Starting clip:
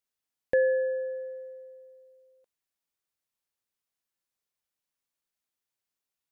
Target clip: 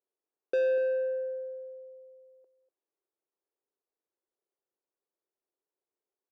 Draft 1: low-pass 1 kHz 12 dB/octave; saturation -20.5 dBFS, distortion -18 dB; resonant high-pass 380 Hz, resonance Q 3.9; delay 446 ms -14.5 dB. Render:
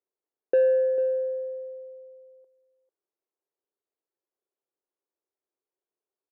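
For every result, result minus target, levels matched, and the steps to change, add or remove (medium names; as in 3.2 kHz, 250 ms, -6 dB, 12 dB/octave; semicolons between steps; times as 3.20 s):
echo 203 ms late; saturation: distortion -10 dB
change: delay 243 ms -14.5 dB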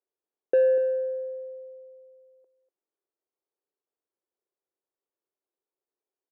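saturation: distortion -10 dB
change: saturation -30 dBFS, distortion -8 dB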